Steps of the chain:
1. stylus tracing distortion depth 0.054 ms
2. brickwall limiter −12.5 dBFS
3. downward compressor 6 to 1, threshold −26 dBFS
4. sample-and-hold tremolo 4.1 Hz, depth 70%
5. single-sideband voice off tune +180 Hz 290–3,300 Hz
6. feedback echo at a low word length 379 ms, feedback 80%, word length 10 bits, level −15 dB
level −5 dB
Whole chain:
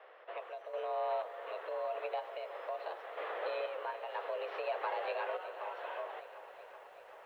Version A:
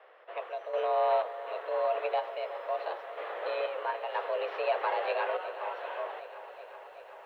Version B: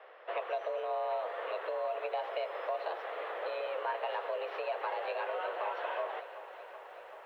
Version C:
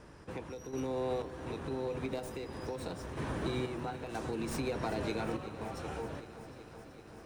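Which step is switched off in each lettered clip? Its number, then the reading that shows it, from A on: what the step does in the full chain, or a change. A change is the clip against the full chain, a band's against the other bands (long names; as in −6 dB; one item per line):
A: 3, average gain reduction 4.5 dB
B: 4, change in crest factor −1.5 dB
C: 5, 4 kHz band +5.0 dB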